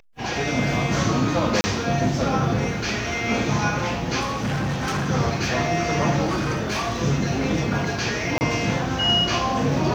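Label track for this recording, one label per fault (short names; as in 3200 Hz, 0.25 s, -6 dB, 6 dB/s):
1.610000	1.640000	gap 30 ms
4.200000	5.090000	clipped -21 dBFS
6.250000	6.990000	clipped -20 dBFS
8.380000	8.410000	gap 29 ms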